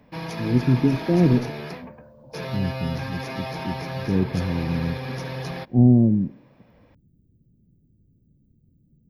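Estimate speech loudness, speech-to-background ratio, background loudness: -22.5 LUFS, 10.0 dB, -32.5 LUFS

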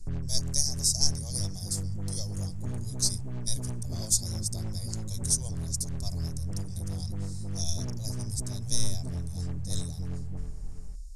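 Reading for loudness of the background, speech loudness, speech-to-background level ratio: -37.0 LUFS, -32.5 LUFS, 4.5 dB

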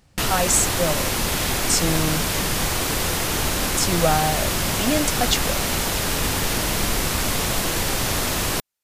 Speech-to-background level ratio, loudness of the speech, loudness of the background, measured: -1.5 dB, -23.5 LUFS, -22.0 LUFS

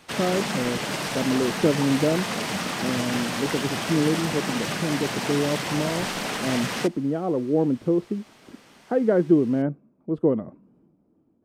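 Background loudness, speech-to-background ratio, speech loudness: -28.0 LUFS, 2.5 dB, -25.5 LUFS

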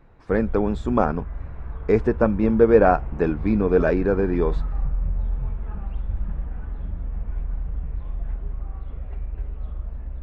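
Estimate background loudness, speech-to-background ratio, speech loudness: -32.5 LUFS, 11.5 dB, -21.0 LUFS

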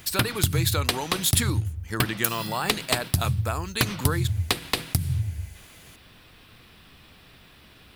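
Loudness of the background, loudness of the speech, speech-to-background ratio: -27.5 LUFS, -28.5 LUFS, -1.0 dB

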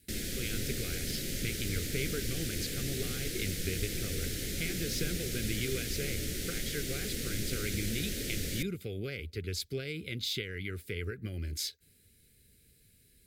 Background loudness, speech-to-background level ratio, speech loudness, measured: -36.0 LUFS, -2.5 dB, -38.5 LUFS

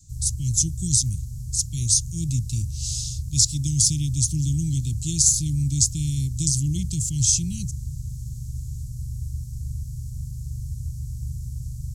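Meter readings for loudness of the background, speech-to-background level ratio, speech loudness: -33.5 LUFS, 11.0 dB, -22.5 LUFS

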